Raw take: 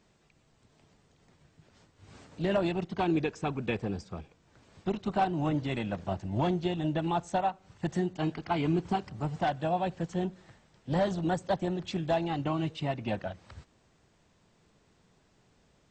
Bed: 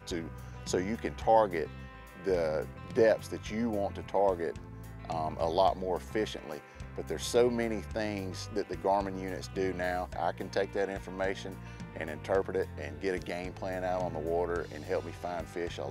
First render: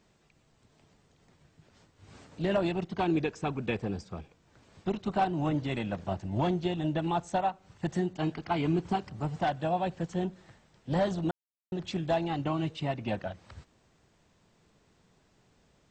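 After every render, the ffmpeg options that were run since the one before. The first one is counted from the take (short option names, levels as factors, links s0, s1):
-filter_complex "[0:a]asplit=3[s0][s1][s2];[s0]atrim=end=11.31,asetpts=PTS-STARTPTS,afade=t=out:st=11.306:d=0.004:c=hsin[s3];[s1]atrim=start=11.31:end=11.72,asetpts=PTS-STARTPTS,volume=0[s4];[s2]atrim=start=11.72,asetpts=PTS-STARTPTS,afade=t=in:d=0.004:c=hsin[s5];[s3][s4][s5]concat=n=3:v=0:a=1"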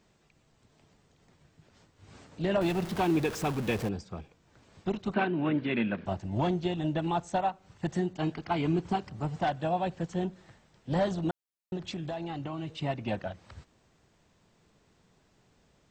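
-filter_complex "[0:a]asettb=1/sr,asplit=3[s0][s1][s2];[s0]atrim=end=2.614[s3];[s1]atrim=start=2.61:end=3.89,asetpts=PTS-STARTPTS,afade=t=in:d=0.004:c=qsin,afade=t=out:st=1.276:d=0.004:c=qsin,aeval=exprs='val(0)+0.5*0.0188*sgn(val(0))':c=same[s4];[s2]atrim=start=3.886[s5];[s3][s4]acrossfade=d=0.004:c1=hsin:c2=qsin[s6];[s6][s5]acrossfade=d=0.004:c1=qsin:c2=hsin,asettb=1/sr,asplit=3[s7][s8][s9];[s7]atrim=end=5.144[s10];[s8]atrim=start=5.14:end=6.06,asetpts=PTS-STARTPTS,afade=t=in:d=0.004:c=qsin,afade=t=out:st=0.916:d=0.004:c=qsin,highpass=130,equalizer=f=140:t=q:w=4:g=-3,equalizer=f=230:t=q:w=4:g=9,equalizer=f=380:t=q:w=4:g=5,equalizer=f=760:t=q:w=4:g=-6,equalizer=f=1600:t=q:w=4:g=8,equalizer=f=2400:t=q:w=4:g=8,lowpass=f=3900:w=0.5412,lowpass=f=3900:w=1.3066[s11];[s9]atrim=start=6.056[s12];[s10][s11]acrossfade=d=0.004:c1=hsin:c2=qsin[s13];[s13][s12]acrossfade=d=0.004:c1=qsin:c2=hsin,asettb=1/sr,asplit=3[s14][s15][s16];[s14]atrim=end=11.774[s17];[s15]atrim=start=11.77:end=12.69,asetpts=PTS-STARTPTS,afade=t=in:d=0.004:c=qsin,afade=t=out:st=0.916:d=0.004:c=qsin,acompressor=threshold=0.0251:ratio=6:attack=3.2:release=140:knee=1:detection=peak[s18];[s16]atrim=start=12.686[s19];[s17][s18]acrossfade=d=0.004:c1=hsin:c2=qsin[s20];[s20][s19]acrossfade=d=0.004:c1=qsin:c2=hsin"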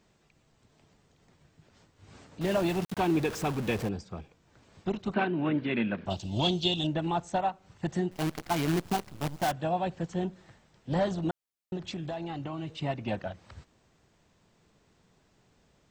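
-filter_complex "[0:a]asettb=1/sr,asplit=3[s0][s1][s2];[s0]atrim=end=2.414[s3];[s1]atrim=start=2.41:end=2.97,asetpts=PTS-STARTPTS,afade=t=in:d=0.004:c=qsin,afade=t=out:st=0.556:d=0.004:c=qsin,aeval=exprs='val(0)*gte(abs(val(0)),0.0188)':c=same[s4];[s2]atrim=start=2.966[s5];[s3][s4]acrossfade=d=0.004:c1=hsin:c2=qsin[s6];[s6][s5]acrossfade=d=0.004:c1=qsin:c2=hsin,asettb=1/sr,asplit=3[s7][s8][s9];[s7]atrim=end=6.104[s10];[s8]atrim=start=6.1:end=6.87,asetpts=PTS-STARTPTS,afade=t=in:d=0.004:c=qsin,afade=t=out:st=0.766:d=0.004:c=qsin,highshelf=f=2500:t=q:w=3:g=10.5[s11];[s9]atrim=start=6.866[s12];[s10][s11]acrossfade=d=0.004:c1=hsin:c2=qsin[s13];[s13][s12]acrossfade=d=0.004:c1=qsin:c2=hsin,asettb=1/sr,asplit=3[s14][s15][s16];[s14]atrim=end=8.114[s17];[s15]atrim=start=8.11:end=9.52,asetpts=PTS-STARTPTS,afade=t=in:d=0.004:c=qsin,afade=t=out:st=1.406:d=0.004:c=qsin,acrusher=bits=6:dc=4:mix=0:aa=0.000001[s18];[s16]atrim=start=9.516[s19];[s17][s18]acrossfade=d=0.004:c1=hsin:c2=qsin[s20];[s20][s19]acrossfade=d=0.004:c1=qsin:c2=hsin"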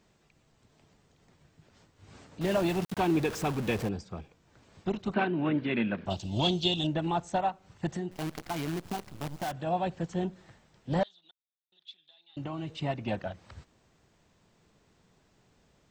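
-filter_complex "[0:a]asplit=3[s0][s1][s2];[s0]afade=t=out:st=7.9:d=0.02[s3];[s1]acompressor=threshold=0.0251:ratio=2.5:attack=3.2:release=140:knee=1:detection=peak,afade=t=in:st=7.9:d=0.02,afade=t=out:st=9.66:d=0.02[s4];[s2]afade=t=in:st=9.66:d=0.02[s5];[s3][s4][s5]amix=inputs=3:normalize=0,asettb=1/sr,asplit=3[s6][s7][s8];[s6]atrim=end=11.034[s9];[s7]atrim=start=11.03:end=12.37,asetpts=PTS-STARTPTS,afade=t=in:d=0.004:c=qsin,afade=t=out:st=1.336:d=0.004:c=qsin,bandpass=f=3600:t=q:w=11[s10];[s8]atrim=start=12.366[s11];[s9][s10]acrossfade=d=0.004:c1=hsin:c2=qsin[s12];[s12][s11]acrossfade=d=0.004:c1=qsin:c2=hsin"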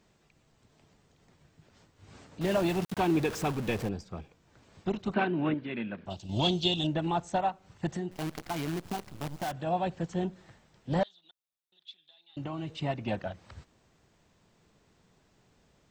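-filter_complex "[0:a]asettb=1/sr,asplit=3[s0][s1][s2];[s0]atrim=end=3.514[s3];[s1]atrim=start=3.51:end=4.14,asetpts=PTS-STARTPTS,afade=t=in:d=0.004:c=qsin,afade=t=out:st=0.626:d=0.004:c=qsin,aeval=exprs='if(lt(val(0),0),0.708*val(0),val(0))':c=same[s4];[s2]atrim=start=4.136[s5];[s3][s4]acrossfade=d=0.004:c1=hsin:c2=qsin[s6];[s6][s5]acrossfade=d=0.004:c1=qsin:c2=hsin,asplit=3[s7][s8][s9];[s7]atrim=end=5.542[s10];[s8]atrim=start=5.538:end=6.292,asetpts=PTS-STARTPTS,volume=0.473[s11];[s9]atrim=start=6.288[s12];[s10][s11]acrossfade=d=0.004:c1=hsin:c2=hsin[s13];[s13][s12]acrossfade=d=0.004:c1=hsin:c2=hsin"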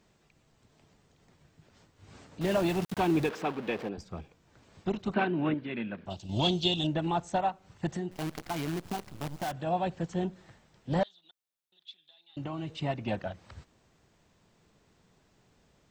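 -filter_complex "[0:a]asettb=1/sr,asplit=3[s0][s1][s2];[s0]atrim=end=3.294[s3];[s1]atrim=start=3.29:end=3.98,asetpts=PTS-STARTPTS,afade=t=in:d=0.004:c=qsin,afade=t=out:st=0.686:d=0.004:c=qsin,acrossover=split=200 4200:gain=0.0891 1 0.158[s4][s5][s6];[s4][s5][s6]amix=inputs=3:normalize=0[s7];[s2]atrim=start=3.976[s8];[s3][s7]acrossfade=d=0.004:c1=hsin:c2=qsin[s9];[s9][s8]acrossfade=d=0.004:c1=qsin:c2=hsin"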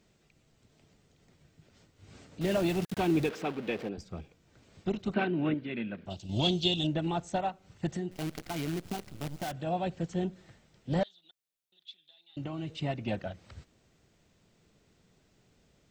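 -af "equalizer=f=980:t=o:w=0.81:g=-6.5,bandreject=f=1700:w=22"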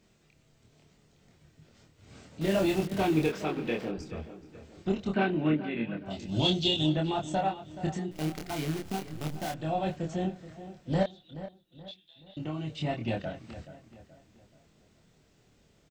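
-filter_complex "[0:a]asplit=2[s0][s1];[s1]adelay=26,volume=0.75[s2];[s0][s2]amix=inputs=2:normalize=0,asplit=2[s3][s4];[s4]adelay=427,lowpass=f=2700:p=1,volume=0.211,asplit=2[s5][s6];[s6]adelay=427,lowpass=f=2700:p=1,volume=0.42,asplit=2[s7][s8];[s8]adelay=427,lowpass=f=2700:p=1,volume=0.42,asplit=2[s9][s10];[s10]adelay=427,lowpass=f=2700:p=1,volume=0.42[s11];[s3][s5][s7][s9][s11]amix=inputs=5:normalize=0"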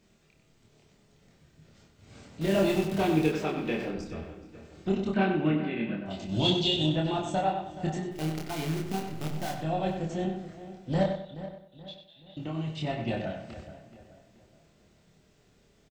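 -filter_complex "[0:a]asplit=2[s0][s1];[s1]adelay=31,volume=0.282[s2];[s0][s2]amix=inputs=2:normalize=0,asplit=2[s3][s4];[s4]adelay=95,lowpass=f=3800:p=1,volume=0.473,asplit=2[s5][s6];[s6]adelay=95,lowpass=f=3800:p=1,volume=0.35,asplit=2[s7][s8];[s8]adelay=95,lowpass=f=3800:p=1,volume=0.35,asplit=2[s9][s10];[s10]adelay=95,lowpass=f=3800:p=1,volume=0.35[s11];[s3][s5][s7][s9][s11]amix=inputs=5:normalize=0"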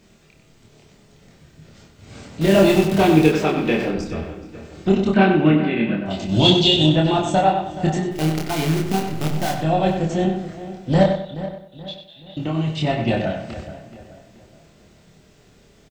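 -af "volume=3.55"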